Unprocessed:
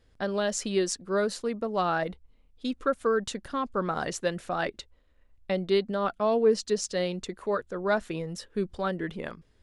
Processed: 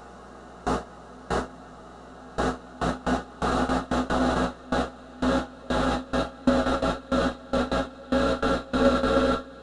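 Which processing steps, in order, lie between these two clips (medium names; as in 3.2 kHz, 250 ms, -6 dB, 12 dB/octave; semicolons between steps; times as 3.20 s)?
phase dispersion highs, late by 149 ms, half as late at 1.5 kHz; on a send: echo that smears into a reverb 556 ms, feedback 41%, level -6 dB; on the sum: Paulstretch 24×, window 1.00 s, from 2.40 s; hum 60 Hz, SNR 10 dB; in parallel at +1.5 dB: level held to a coarse grid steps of 9 dB; on the sum: gate with hold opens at -16 dBFS; trim +3.5 dB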